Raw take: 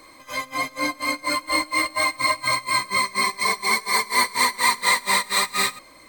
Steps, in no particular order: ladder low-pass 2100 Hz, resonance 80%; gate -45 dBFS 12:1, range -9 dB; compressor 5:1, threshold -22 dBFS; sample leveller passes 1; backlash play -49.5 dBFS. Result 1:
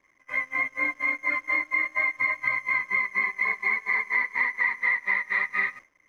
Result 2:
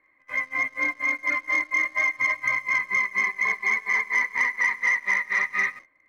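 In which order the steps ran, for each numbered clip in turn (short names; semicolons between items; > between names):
sample leveller > ladder low-pass > backlash > compressor > gate; backlash > ladder low-pass > compressor > gate > sample leveller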